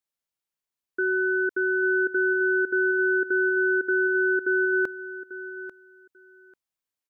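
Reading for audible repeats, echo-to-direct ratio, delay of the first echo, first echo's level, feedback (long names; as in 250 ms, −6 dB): 2, −13.5 dB, 842 ms, −13.5 dB, 17%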